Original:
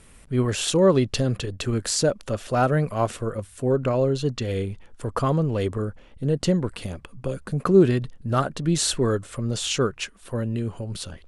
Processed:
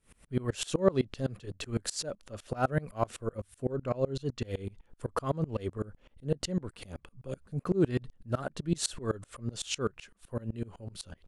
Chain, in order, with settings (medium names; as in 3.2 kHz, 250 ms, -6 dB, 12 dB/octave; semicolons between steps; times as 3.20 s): sawtooth tremolo in dB swelling 7.9 Hz, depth 26 dB; trim -2.5 dB